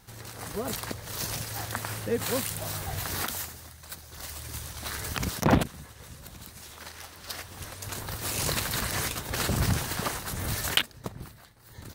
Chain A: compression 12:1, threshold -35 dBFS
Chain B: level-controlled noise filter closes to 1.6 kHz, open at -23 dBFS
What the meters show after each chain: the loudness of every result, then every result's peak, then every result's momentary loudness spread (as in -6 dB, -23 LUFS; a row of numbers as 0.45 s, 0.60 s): -39.5 LUFS, -31.5 LUFS; -18.5 dBFS, -8.0 dBFS; 8 LU, 21 LU